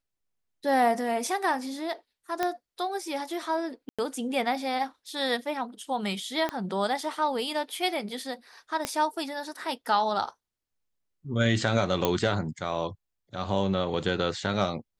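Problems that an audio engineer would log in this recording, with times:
0:02.43: click −13 dBFS
0:03.89–0:03.99: drop-out 96 ms
0:06.49: click −16 dBFS
0:08.85: click −12 dBFS
0:12.05: click −9 dBFS

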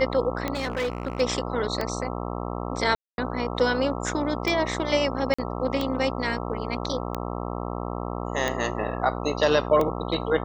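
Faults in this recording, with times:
mains buzz 60 Hz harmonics 22 −31 dBFS
scratch tick 45 rpm −13 dBFS
0:00.53–0:01.21: clipping −23 dBFS
0:02.95–0:03.18: drop-out 231 ms
0:05.34–0:05.38: drop-out 45 ms

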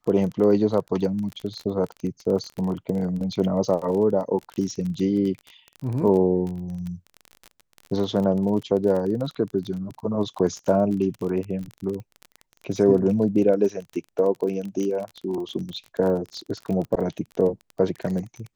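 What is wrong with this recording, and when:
surface crackle 28 per second −29 dBFS

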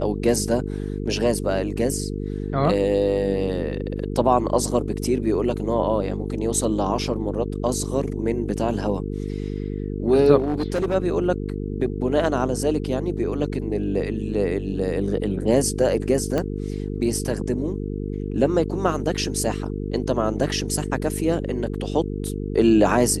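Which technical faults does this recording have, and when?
mains buzz 50 Hz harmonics 9 −28 dBFS
0:10.38–0:10.95: clipping −18.5 dBFS
0:16.38: click −12 dBFS

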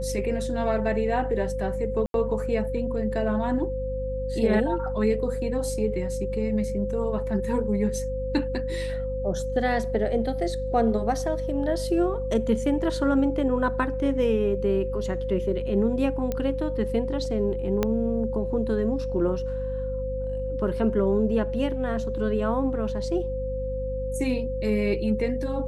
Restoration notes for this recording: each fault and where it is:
mains hum 50 Hz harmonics 5 −32 dBFS
whistle 520 Hz −29 dBFS
0:02.06–0:02.14: drop-out 82 ms
0:16.32: click −15 dBFS
0:17.83: click −10 dBFS

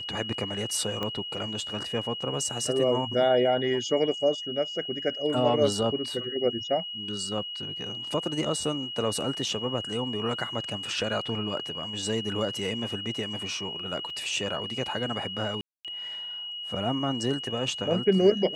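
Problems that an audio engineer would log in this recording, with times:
whistle 2,900 Hz −34 dBFS
0:01.03: click −17 dBFS
0:14.10: drop-out 2.2 ms
0:15.61–0:15.85: drop-out 237 ms

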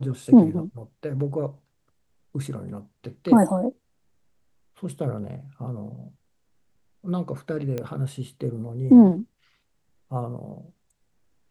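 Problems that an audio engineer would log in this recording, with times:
0:07.78: click −17 dBFS

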